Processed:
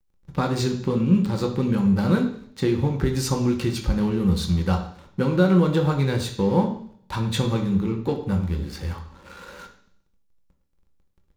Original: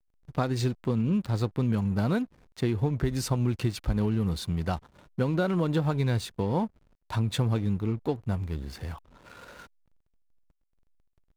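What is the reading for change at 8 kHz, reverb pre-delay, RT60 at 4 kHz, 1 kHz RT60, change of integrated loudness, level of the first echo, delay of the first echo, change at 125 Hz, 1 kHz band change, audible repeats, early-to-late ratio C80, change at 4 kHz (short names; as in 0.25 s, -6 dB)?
+6.0 dB, 3 ms, 0.75 s, 0.55 s, +5.5 dB, none, none, +4.0 dB, +5.5 dB, none, 12.0 dB, +6.5 dB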